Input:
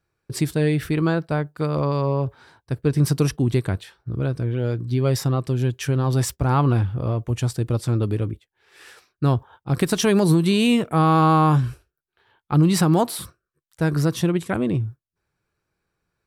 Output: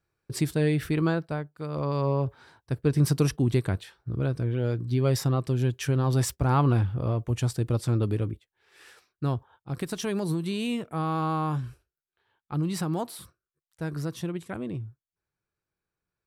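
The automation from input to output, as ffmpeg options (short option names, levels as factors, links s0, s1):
-af "volume=2,afade=t=out:st=1.06:d=0.51:silence=0.334965,afade=t=in:st=1.57:d=0.5:silence=0.316228,afade=t=out:st=8.07:d=1.72:silence=0.398107"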